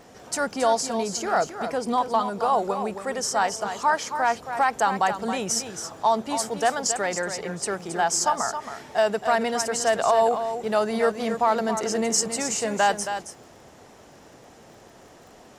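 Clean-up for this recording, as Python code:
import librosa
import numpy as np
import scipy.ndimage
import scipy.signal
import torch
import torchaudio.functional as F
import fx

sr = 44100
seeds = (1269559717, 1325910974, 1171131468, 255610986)

y = fx.fix_declip(x, sr, threshold_db=-11.0)
y = fx.fix_declick_ar(y, sr, threshold=6.5)
y = fx.fix_echo_inverse(y, sr, delay_ms=272, level_db=-9.0)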